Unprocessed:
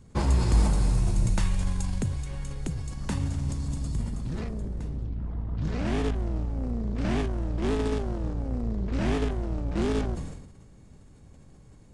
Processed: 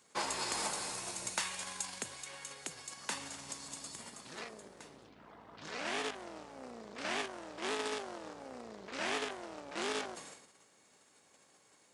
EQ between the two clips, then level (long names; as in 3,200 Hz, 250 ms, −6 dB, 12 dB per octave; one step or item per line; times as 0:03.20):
high-pass filter 460 Hz 12 dB per octave
tilt shelving filter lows −5.5 dB, about 860 Hz
−2.5 dB